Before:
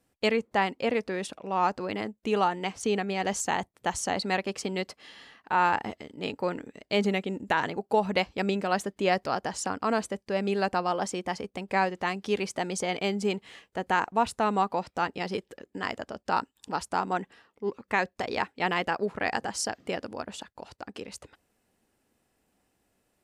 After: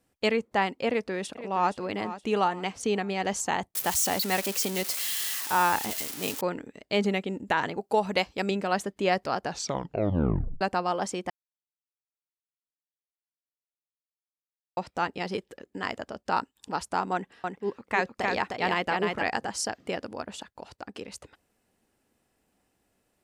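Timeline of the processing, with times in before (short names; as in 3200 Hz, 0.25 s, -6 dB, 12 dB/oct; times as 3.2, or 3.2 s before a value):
0.88–1.77 echo throw 0.47 s, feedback 40%, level -13 dB
3.75–6.41 switching spikes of -21.5 dBFS
7.79–8.51 tone controls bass -3 dB, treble +5 dB
9.41 tape stop 1.20 s
11.3–14.77 mute
17.13–19.23 echo 0.308 s -3.5 dB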